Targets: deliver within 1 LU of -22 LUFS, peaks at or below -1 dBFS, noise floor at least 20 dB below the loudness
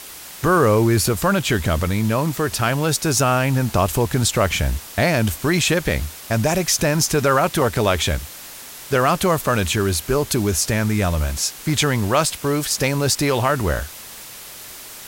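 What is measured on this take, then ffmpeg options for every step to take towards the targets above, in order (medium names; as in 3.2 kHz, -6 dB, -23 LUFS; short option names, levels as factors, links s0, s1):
noise floor -38 dBFS; noise floor target -40 dBFS; loudness -19.5 LUFS; peak level -4.5 dBFS; loudness target -22.0 LUFS
-> -af "afftdn=nr=6:nf=-38"
-af "volume=0.75"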